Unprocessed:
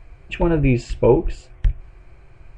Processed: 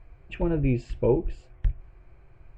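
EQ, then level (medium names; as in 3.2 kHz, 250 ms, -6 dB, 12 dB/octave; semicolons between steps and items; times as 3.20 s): treble shelf 3.5 kHz -11.5 dB; dynamic bell 1.1 kHz, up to -5 dB, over -34 dBFS, Q 0.8; -6.5 dB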